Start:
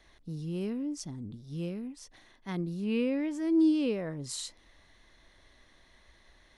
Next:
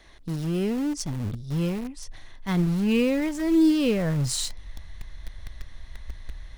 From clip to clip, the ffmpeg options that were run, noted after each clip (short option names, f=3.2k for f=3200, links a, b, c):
-filter_complex "[0:a]asubboost=boost=10:cutoff=100,asplit=2[a][b];[b]acrusher=bits=5:mix=0:aa=0.000001,volume=-12dB[c];[a][c]amix=inputs=2:normalize=0,volume=7.5dB"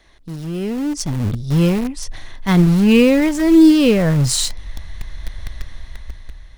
-af "dynaudnorm=f=300:g=7:m=14dB"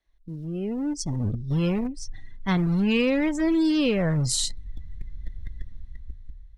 -filter_complex "[0:a]acrossover=split=690|1200[a][b][c];[a]alimiter=limit=-11.5dB:level=0:latency=1:release=131[d];[d][b][c]amix=inputs=3:normalize=0,afftdn=nr=21:nf=-33,volume=-6.5dB"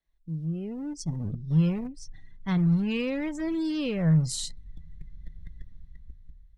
-af "equalizer=f=160:t=o:w=0.29:g=13,volume=-7.5dB"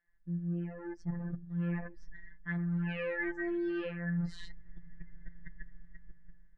-af "afftfilt=real='hypot(re,im)*cos(PI*b)':imag='0':win_size=1024:overlap=0.75,lowpass=f=1.7k:t=q:w=12,areverse,acompressor=threshold=-31dB:ratio=12,areverse"